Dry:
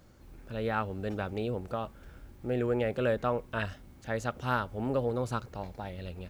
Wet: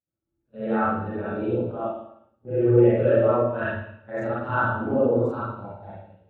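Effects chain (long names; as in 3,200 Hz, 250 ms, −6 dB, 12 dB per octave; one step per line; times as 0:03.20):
every overlapping window played backwards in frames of 100 ms
high-pass filter 87 Hz
noise gate −42 dBFS, range −14 dB
spring reverb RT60 1.1 s, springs 53/59 ms, chirp 30 ms, DRR −8 dB
every bin expanded away from the loudest bin 1.5 to 1
level +6.5 dB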